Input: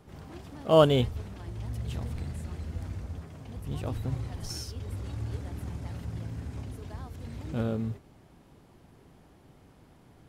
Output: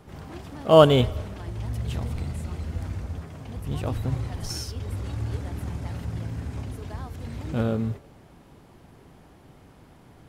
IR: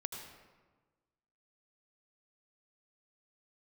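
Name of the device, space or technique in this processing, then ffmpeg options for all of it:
filtered reverb send: -filter_complex "[0:a]asplit=2[link_01][link_02];[link_02]highpass=480,lowpass=3500[link_03];[1:a]atrim=start_sample=2205[link_04];[link_03][link_04]afir=irnorm=-1:irlink=0,volume=-13dB[link_05];[link_01][link_05]amix=inputs=2:normalize=0,asettb=1/sr,asplit=3[link_06][link_07][link_08];[link_06]atrim=end=2.004[link_09];[link_07]atrim=start=2:end=2.64,asetpts=PTS-STARTPTS,afade=type=in:duration=0.004:curve=qsin,afade=type=out:start_time=0.636:duration=0.004:curve=qsin,bandreject=frequency=1700:width=9.1[link_10];[link_08]atrim=start=2.636[link_11];[link_09][link_10]acrossfade=duration=0.004:curve1=hsin:curve2=qsin[link_12];[link_12][link_11]acrossfade=duration=0.004:curve1=qsin:curve2=hsin,volume=5dB"

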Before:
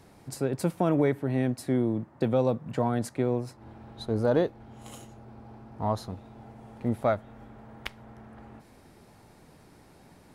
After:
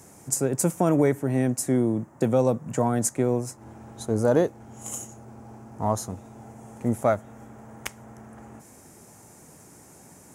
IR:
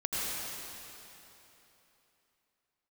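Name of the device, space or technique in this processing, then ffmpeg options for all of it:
budget condenser microphone: -af "highpass=78,highshelf=frequency=5300:width_type=q:width=3:gain=9,volume=3.5dB"

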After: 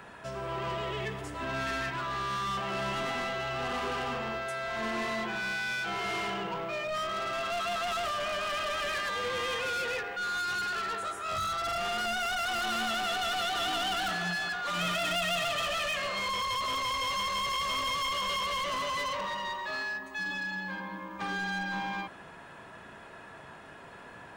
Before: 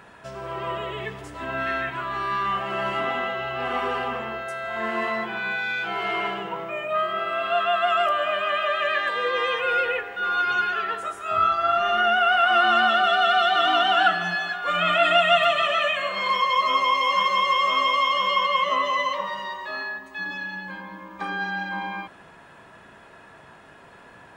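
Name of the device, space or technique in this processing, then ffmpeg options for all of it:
one-band saturation: -filter_complex "[0:a]acrossover=split=220|4200[link_01][link_02][link_03];[link_02]asoftclip=type=tanh:threshold=-31.5dB[link_04];[link_01][link_04][link_03]amix=inputs=3:normalize=0"

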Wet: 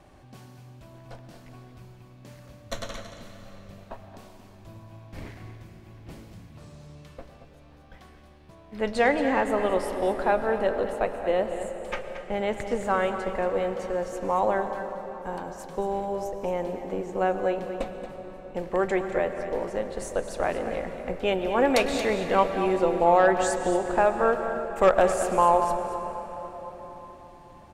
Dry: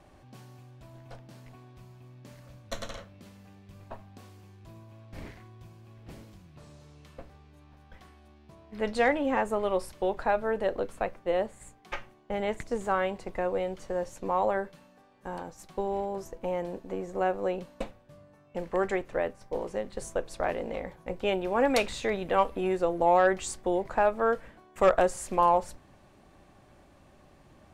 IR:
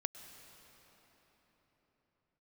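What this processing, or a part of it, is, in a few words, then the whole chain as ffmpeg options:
cave: -filter_complex "[0:a]aecho=1:1:228:0.282[link_01];[1:a]atrim=start_sample=2205[link_02];[link_01][link_02]afir=irnorm=-1:irlink=0,volume=4dB"

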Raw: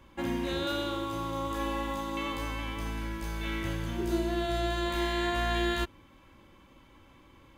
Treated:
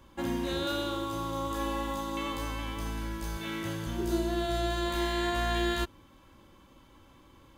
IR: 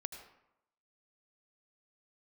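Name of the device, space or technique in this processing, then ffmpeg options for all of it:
exciter from parts: -filter_complex "[0:a]asettb=1/sr,asplit=3[link_01][link_02][link_03];[link_01]atrim=end=3.374[link_04];[link_02]atrim=start=3.37:end=3.87,asetpts=PTS-STARTPTS,afade=type=in:duration=0.004:curve=qsin,afade=type=out:start_time=0.496:duration=0.004:curve=qsin,highpass=frequency=96:width=0.5412,highpass=frequency=96:width=1.3066[link_05];[link_03]atrim=start=3.866[link_06];[link_04][link_05]acrossfade=duration=0.004:curve1=hsin:curve2=qsin[link_07];[link_07][link_06]acrossfade=duration=0.004:curve1=qsin:curve2=hsin,asplit=2[link_08][link_09];[link_09]highpass=frequency=2100:width=0.5412,highpass=frequency=2100:width=1.3066,asoftclip=type=tanh:threshold=-38.5dB,volume=-5dB[link_10];[link_08][link_10]amix=inputs=2:normalize=0"

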